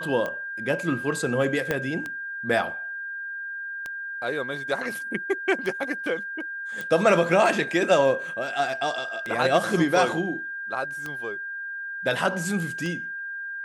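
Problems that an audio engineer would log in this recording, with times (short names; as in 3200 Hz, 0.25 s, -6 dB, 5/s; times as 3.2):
tick 33 1/3 rpm -18 dBFS
tone 1600 Hz -31 dBFS
1.71 pop -11 dBFS
6.81 pop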